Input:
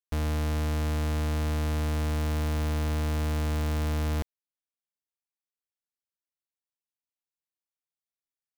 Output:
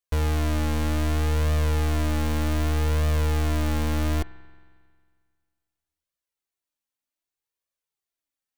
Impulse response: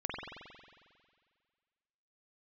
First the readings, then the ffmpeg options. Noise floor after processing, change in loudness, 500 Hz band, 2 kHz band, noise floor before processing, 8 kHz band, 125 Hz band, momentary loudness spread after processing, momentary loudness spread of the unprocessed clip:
under -85 dBFS, +4.0 dB, +4.5 dB, +5.0 dB, under -85 dBFS, +4.5 dB, +4.0 dB, 2 LU, 1 LU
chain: -filter_complex "[0:a]bandreject=f=5.1k:w=28,flanger=delay=1.6:depth=2.3:regen=27:speed=0.65:shape=triangular,asplit=2[a][b];[1:a]atrim=start_sample=2205[c];[b][c]afir=irnorm=-1:irlink=0,volume=-18dB[d];[a][d]amix=inputs=2:normalize=0,volume=7.5dB"

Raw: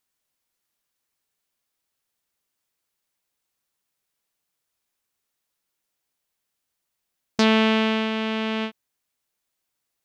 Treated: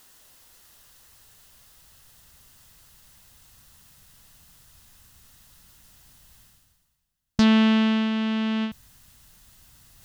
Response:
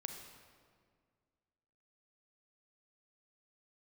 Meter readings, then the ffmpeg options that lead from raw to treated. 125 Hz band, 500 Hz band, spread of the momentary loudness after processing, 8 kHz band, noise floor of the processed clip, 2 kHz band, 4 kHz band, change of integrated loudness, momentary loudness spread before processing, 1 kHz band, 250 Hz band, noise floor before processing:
+3.5 dB, -7.5 dB, 12 LU, n/a, -71 dBFS, -4.5 dB, -3.5 dB, 0.0 dB, 12 LU, -4.5 dB, +3.0 dB, -81 dBFS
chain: -af "asubboost=boost=12:cutoff=120,areverse,acompressor=mode=upward:threshold=-28dB:ratio=2.5,areverse,bandreject=f=2.3k:w=8,volume=-3dB"

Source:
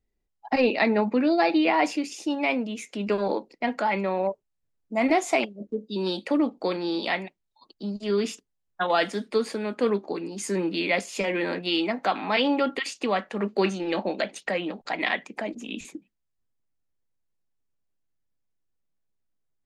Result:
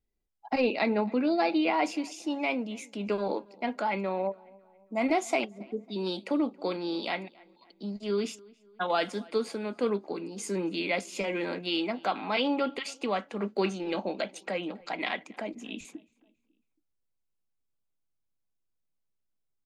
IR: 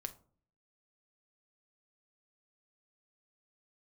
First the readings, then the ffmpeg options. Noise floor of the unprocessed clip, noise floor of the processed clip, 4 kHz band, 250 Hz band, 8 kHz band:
-78 dBFS, -79 dBFS, -4.5 dB, -4.5 dB, -4.5 dB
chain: -filter_complex "[0:a]bandreject=f=1.8k:w=7.6,asplit=2[a][b];[b]adelay=275,lowpass=f=3.5k:p=1,volume=-24dB,asplit=2[c][d];[d]adelay=275,lowpass=f=3.5k:p=1,volume=0.48,asplit=2[e][f];[f]adelay=275,lowpass=f=3.5k:p=1,volume=0.48[g];[a][c][e][g]amix=inputs=4:normalize=0,volume=-4.5dB"

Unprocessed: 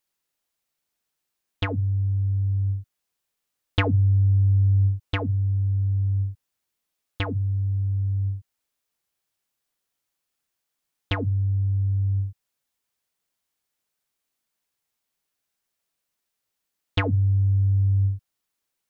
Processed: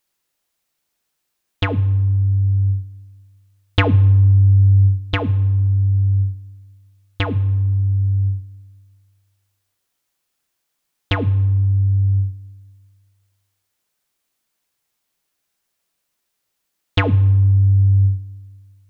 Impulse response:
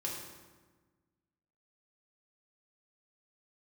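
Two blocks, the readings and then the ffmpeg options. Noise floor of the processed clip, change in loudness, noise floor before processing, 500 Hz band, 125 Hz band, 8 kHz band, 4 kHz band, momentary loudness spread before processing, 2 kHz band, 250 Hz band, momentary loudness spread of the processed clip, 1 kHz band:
-75 dBFS, +7.0 dB, -82 dBFS, +6.5 dB, +7.0 dB, n/a, +6.5 dB, 10 LU, +6.5 dB, +6.5 dB, 12 LU, +7.0 dB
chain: -filter_complex "[0:a]asplit=2[a][b];[1:a]atrim=start_sample=2205[c];[b][c]afir=irnorm=-1:irlink=0,volume=-15dB[d];[a][d]amix=inputs=2:normalize=0,volume=5.5dB"

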